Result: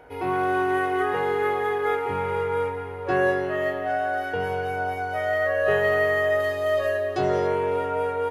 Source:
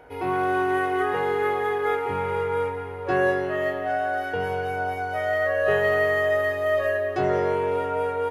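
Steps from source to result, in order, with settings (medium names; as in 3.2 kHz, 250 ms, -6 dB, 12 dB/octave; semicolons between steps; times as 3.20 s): 6.40–7.47 s: graphic EQ 2/4/8 kHz -4/+6/+4 dB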